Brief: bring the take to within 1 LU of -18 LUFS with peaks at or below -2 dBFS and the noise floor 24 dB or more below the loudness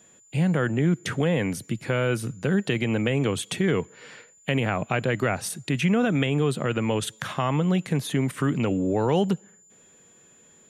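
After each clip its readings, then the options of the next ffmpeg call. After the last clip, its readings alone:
steady tone 7100 Hz; tone level -54 dBFS; loudness -25.0 LUFS; peak -9.5 dBFS; loudness target -18.0 LUFS
-> -af "bandreject=f=7.1k:w=30"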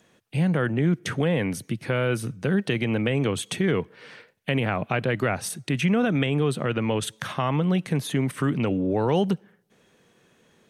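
steady tone none; loudness -25.0 LUFS; peak -10.0 dBFS; loudness target -18.0 LUFS
-> -af "volume=7dB"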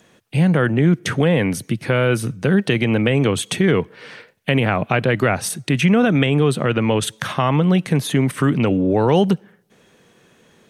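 loudness -18.0 LUFS; peak -3.0 dBFS; noise floor -55 dBFS

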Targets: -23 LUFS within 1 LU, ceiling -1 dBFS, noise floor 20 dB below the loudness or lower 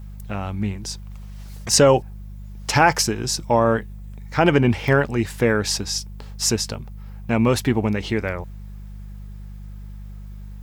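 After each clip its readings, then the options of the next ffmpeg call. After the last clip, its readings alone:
hum 50 Hz; harmonics up to 200 Hz; hum level -33 dBFS; loudness -20.5 LUFS; peak -2.5 dBFS; loudness target -23.0 LUFS
-> -af "bandreject=f=50:t=h:w=4,bandreject=f=100:t=h:w=4,bandreject=f=150:t=h:w=4,bandreject=f=200:t=h:w=4"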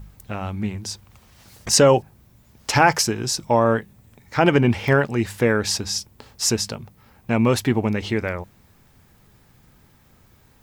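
hum none; loudness -20.5 LUFS; peak -2.5 dBFS; loudness target -23.0 LUFS
-> -af "volume=-2.5dB"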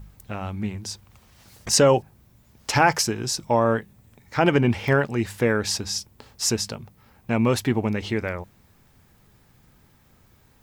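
loudness -23.0 LUFS; peak -5.0 dBFS; noise floor -58 dBFS

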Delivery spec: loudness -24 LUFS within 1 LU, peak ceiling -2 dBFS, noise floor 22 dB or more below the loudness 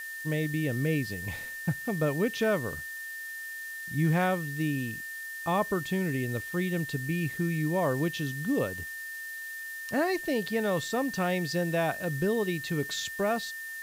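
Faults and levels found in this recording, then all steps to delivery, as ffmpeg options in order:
steady tone 1800 Hz; tone level -37 dBFS; noise floor -40 dBFS; noise floor target -53 dBFS; loudness -30.5 LUFS; peak -15.0 dBFS; loudness target -24.0 LUFS
-> -af "bandreject=f=1.8k:w=30"
-af "afftdn=nr=13:nf=-40"
-af "volume=6.5dB"

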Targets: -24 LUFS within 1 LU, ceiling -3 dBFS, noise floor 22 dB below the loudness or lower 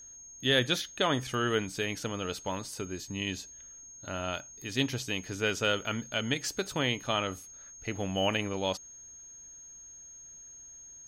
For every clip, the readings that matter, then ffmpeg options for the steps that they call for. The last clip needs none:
steady tone 6500 Hz; tone level -47 dBFS; loudness -31.5 LUFS; peak -11.5 dBFS; loudness target -24.0 LUFS
-> -af "bandreject=f=6.5k:w=30"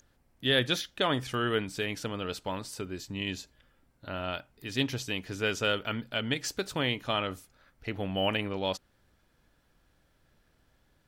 steady tone none; loudness -32.0 LUFS; peak -11.5 dBFS; loudness target -24.0 LUFS
-> -af "volume=8dB"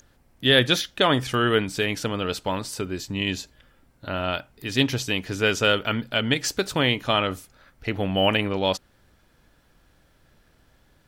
loudness -24.0 LUFS; peak -3.5 dBFS; noise floor -61 dBFS

